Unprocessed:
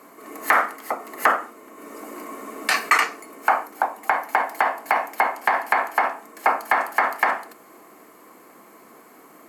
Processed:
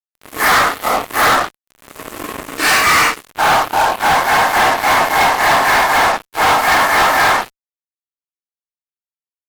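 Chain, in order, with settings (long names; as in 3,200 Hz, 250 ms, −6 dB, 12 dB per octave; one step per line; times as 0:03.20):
random phases in long frames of 200 ms
fuzz pedal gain 27 dB, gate −35 dBFS
level +4 dB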